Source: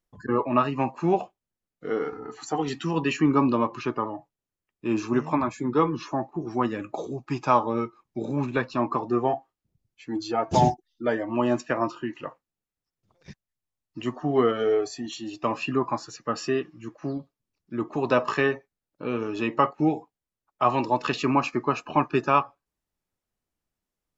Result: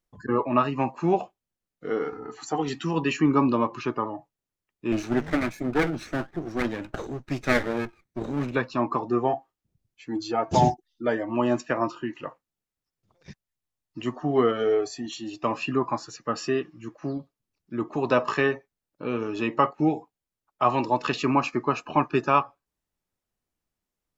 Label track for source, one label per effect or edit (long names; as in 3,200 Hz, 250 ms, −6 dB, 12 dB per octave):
4.920000	8.550000	lower of the sound and its delayed copy delay 0.49 ms